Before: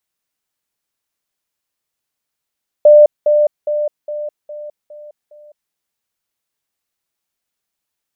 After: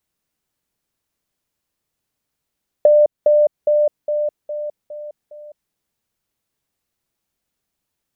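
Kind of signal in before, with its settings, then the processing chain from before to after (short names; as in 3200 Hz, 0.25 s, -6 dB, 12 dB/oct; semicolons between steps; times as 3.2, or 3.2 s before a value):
level ladder 596 Hz -2.5 dBFS, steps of -6 dB, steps 7, 0.21 s 0.20 s
low shelf 470 Hz +10.5 dB; compressor 4:1, threshold -12 dBFS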